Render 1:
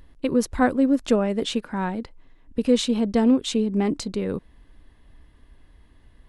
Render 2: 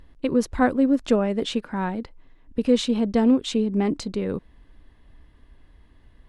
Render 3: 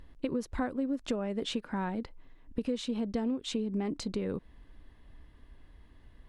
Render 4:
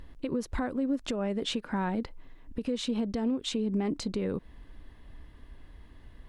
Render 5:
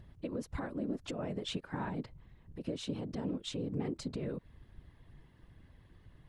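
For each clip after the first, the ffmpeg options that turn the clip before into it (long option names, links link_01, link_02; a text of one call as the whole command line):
ffmpeg -i in.wav -af "highshelf=frequency=8400:gain=-9.5" out.wav
ffmpeg -i in.wav -af "acompressor=threshold=-27dB:ratio=6,volume=-2.5dB" out.wav
ffmpeg -i in.wav -af "alimiter=level_in=3dB:limit=-24dB:level=0:latency=1:release=137,volume=-3dB,volume=5dB" out.wav
ffmpeg -i in.wav -af "afftfilt=real='hypot(re,im)*cos(2*PI*random(0))':imag='hypot(re,im)*sin(2*PI*random(1))':win_size=512:overlap=0.75,volume=-1.5dB" out.wav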